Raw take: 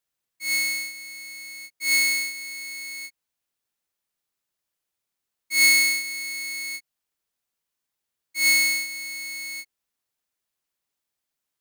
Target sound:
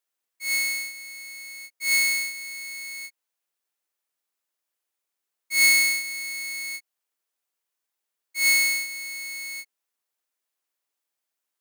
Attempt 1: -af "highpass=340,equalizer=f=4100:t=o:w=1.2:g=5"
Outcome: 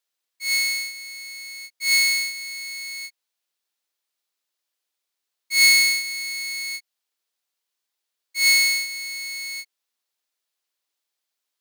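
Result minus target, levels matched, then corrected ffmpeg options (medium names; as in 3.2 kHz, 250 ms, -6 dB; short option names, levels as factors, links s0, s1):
4 kHz band +4.0 dB
-af "highpass=340,equalizer=f=4100:t=o:w=1.2:g=-2"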